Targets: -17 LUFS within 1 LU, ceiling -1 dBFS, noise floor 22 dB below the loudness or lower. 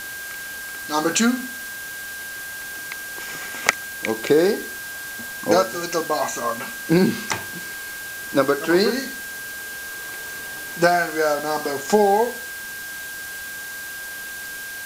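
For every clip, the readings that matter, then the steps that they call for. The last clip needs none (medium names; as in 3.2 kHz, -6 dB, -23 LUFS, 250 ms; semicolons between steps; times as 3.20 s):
steady tone 1.6 kHz; tone level -32 dBFS; noise floor -33 dBFS; noise floor target -46 dBFS; loudness -23.5 LUFS; peak level -2.0 dBFS; loudness target -17.0 LUFS
-> band-stop 1.6 kHz, Q 30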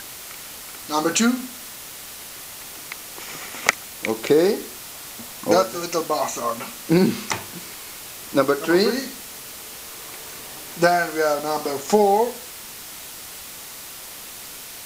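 steady tone not found; noise floor -38 dBFS; noise floor target -45 dBFS
-> noise reduction 7 dB, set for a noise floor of -38 dBFS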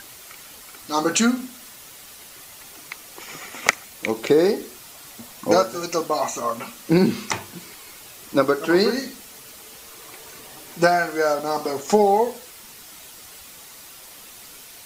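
noise floor -43 dBFS; noise floor target -44 dBFS
-> noise reduction 6 dB, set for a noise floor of -43 dBFS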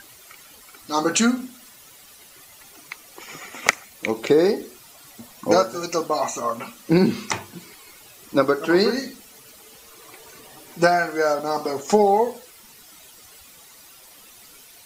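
noise floor -48 dBFS; loudness -21.5 LUFS; peak level -1.0 dBFS; loudness target -17.0 LUFS
-> trim +4.5 dB; peak limiter -1 dBFS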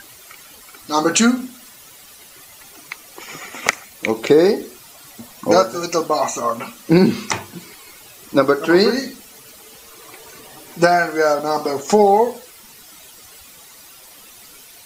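loudness -17.5 LUFS; peak level -1.0 dBFS; noise floor -44 dBFS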